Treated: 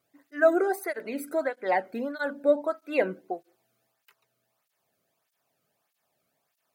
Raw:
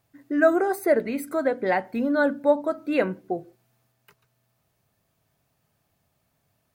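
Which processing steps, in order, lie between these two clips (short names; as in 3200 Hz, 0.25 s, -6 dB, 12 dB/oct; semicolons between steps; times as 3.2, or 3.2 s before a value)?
low shelf 110 Hz -11 dB; tape flanging out of phase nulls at 1.6 Hz, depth 1.2 ms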